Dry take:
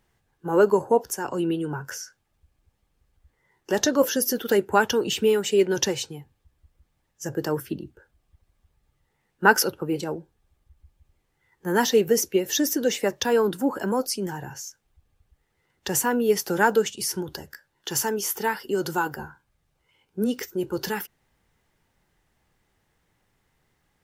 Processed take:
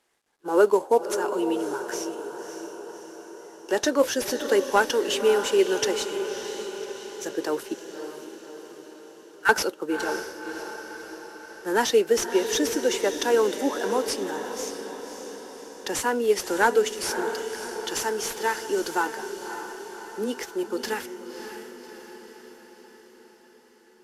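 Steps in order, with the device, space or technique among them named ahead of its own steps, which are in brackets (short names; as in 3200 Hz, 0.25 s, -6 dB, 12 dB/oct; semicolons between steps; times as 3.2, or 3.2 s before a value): low shelf 81 Hz +3 dB; 7.74–9.49 HPF 1500 Hz 24 dB/oct; early wireless headset (HPF 280 Hz 24 dB/oct; CVSD 64 kbps); diffused feedback echo 0.576 s, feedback 59%, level -9 dB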